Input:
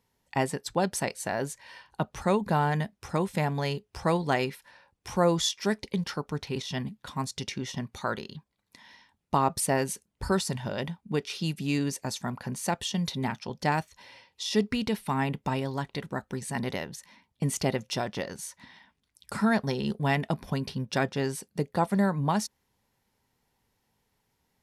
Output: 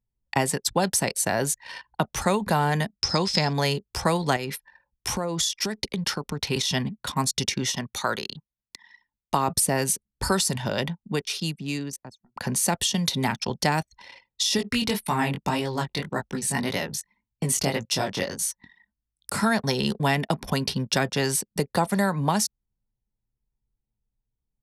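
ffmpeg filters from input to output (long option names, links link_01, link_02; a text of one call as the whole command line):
ffmpeg -i in.wav -filter_complex "[0:a]asettb=1/sr,asplit=3[link_01][link_02][link_03];[link_01]atrim=end=2.934[link_04];[link_02]atrim=start=2.93:end=3.53,asetpts=PTS-STARTPTS,afade=type=in:duration=0.004:curve=qsin,afade=type=out:start_time=0.596:duration=0.004:curve=qsin,lowpass=frequency=5100:width_type=q:width=12[link_05];[link_03]atrim=start=3.526[link_06];[link_04][link_05]acrossfade=duration=0.004:curve1=hsin:curve2=qsin[link_07];[link_07][link_06]acrossfade=duration=0.004:curve1=qsin:curve2=hsin,asettb=1/sr,asplit=3[link_08][link_09][link_10];[link_08]atrim=end=4.364[link_11];[link_09]atrim=start=4.36:end=6.47,asetpts=PTS-STARTPTS,afade=type=in:duration=0.004:curve=qsin,afade=type=out:start_time=2.106:duration=0.004:curve=qsin,acompressor=threshold=-32dB:ratio=6:attack=3.2:release=140:knee=1:detection=peak[link_12];[link_10]atrim=start=6.466[link_13];[link_11][link_12]acrossfade=duration=0.004:curve1=hsin:curve2=qsin[link_14];[link_14][link_13]acrossfade=duration=0.004:curve1=qsin:curve2=hsin,asettb=1/sr,asplit=3[link_15][link_16][link_17];[link_15]atrim=end=7.704[link_18];[link_16]atrim=start=7.7:end=9.48,asetpts=PTS-STARTPTS,afade=type=in:duration=0.004:curve=qsin,afade=type=out:start_time=1.776:duration=0.004:curve=qsin,lowshelf=frequency=360:gain=-9[link_19];[link_17]atrim=start=9.476[link_20];[link_18][link_19]acrossfade=duration=0.004:curve1=hsin:curve2=qsin[link_21];[link_21][link_20]acrossfade=duration=0.004:curve1=qsin:curve2=hsin,asettb=1/sr,asplit=3[link_22][link_23][link_24];[link_22]atrim=end=14.574[link_25];[link_23]atrim=start=14.57:end=19.43,asetpts=PTS-STARTPTS,afade=type=in:duration=0.004:curve=qsin,afade=type=out:start_time=4.856:duration=0.004:curve=qsin,flanger=delay=17:depth=5.3:speed=1.8[link_26];[link_24]atrim=start=19.426[link_27];[link_25][link_26]acrossfade=duration=0.004:curve1=hsin:curve2=qsin[link_28];[link_28][link_27]acrossfade=duration=0.004:curve1=qsin:curve2=hsin,asplit=2[link_29][link_30];[link_29]atrim=end=12.36,asetpts=PTS-STARTPTS,afade=type=out:start_time=10.34:duration=2.02[link_31];[link_30]atrim=start=12.36,asetpts=PTS-STARTPTS,afade=type=in:duration=0.004:curve=hsin[link_32];[link_31][link_32]concat=n=2:v=0:a=1,anlmdn=0.01,highshelf=frequency=4300:gain=10.5,acrossover=split=190|520[link_33][link_34][link_35];[link_33]acompressor=threshold=-38dB:ratio=4[link_36];[link_34]acompressor=threshold=-37dB:ratio=4[link_37];[link_35]acompressor=threshold=-30dB:ratio=4[link_38];[link_36][link_37][link_38]amix=inputs=3:normalize=0,volume=8dB" out.wav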